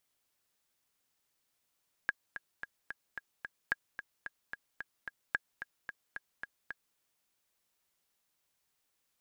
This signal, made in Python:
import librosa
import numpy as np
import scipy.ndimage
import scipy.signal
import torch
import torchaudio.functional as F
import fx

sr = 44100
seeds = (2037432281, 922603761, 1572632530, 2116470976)

y = fx.click_track(sr, bpm=221, beats=6, bars=3, hz=1640.0, accent_db=11.0, level_db=-16.0)